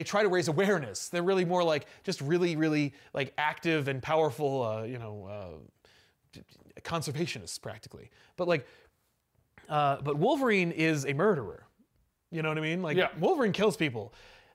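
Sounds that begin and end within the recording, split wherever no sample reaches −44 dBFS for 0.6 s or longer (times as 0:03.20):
0:09.58–0:11.59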